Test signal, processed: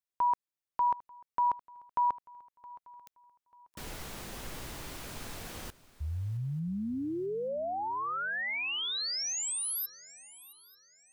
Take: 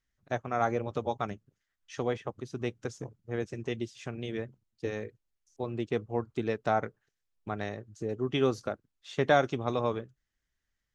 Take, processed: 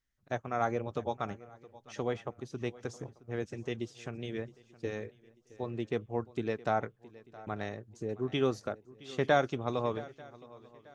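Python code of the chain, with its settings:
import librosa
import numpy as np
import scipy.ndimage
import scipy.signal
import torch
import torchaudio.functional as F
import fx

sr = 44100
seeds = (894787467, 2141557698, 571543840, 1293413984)

y = fx.echo_swing(x, sr, ms=890, ratio=3, feedback_pct=30, wet_db=-20)
y = y * 10.0 ** (-2.5 / 20.0)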